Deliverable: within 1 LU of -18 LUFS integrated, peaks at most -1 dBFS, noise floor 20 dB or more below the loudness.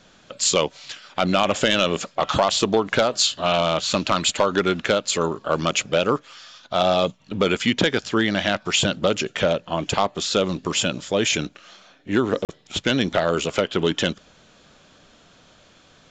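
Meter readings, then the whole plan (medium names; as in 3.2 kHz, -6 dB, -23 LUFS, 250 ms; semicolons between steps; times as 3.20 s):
dropouts 1; longest dropout 38 ms; loudness -21.5 LUFS; peak level -8.5 dBFS; loudness target -18.0 LUFS
-> interpolate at 12.45 s, 38 ms; trim +3.5 dB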